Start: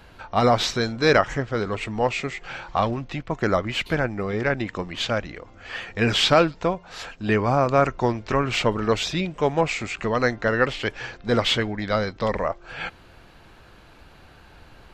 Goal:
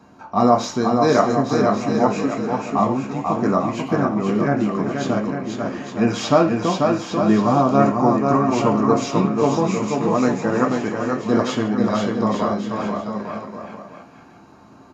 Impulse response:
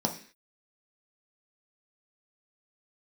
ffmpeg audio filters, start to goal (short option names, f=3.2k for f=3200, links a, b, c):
-filter_complex "[0:a]highpass=42,aecho=1:1:490|857.5|1133|1340|1495:0.631|0.398|0.251|0.158|0.1[a];[1:a]atrim=start_sample=2205,asetrate=52920,aresample=44100[b];[a][b]afir=irnorm=-1:irlink=0,volume=-8dB"